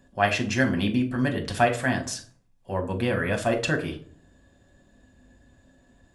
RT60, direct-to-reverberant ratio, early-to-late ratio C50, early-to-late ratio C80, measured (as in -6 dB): 0.50 s, 2.5 dB, 12.5 dB, 17.5 dB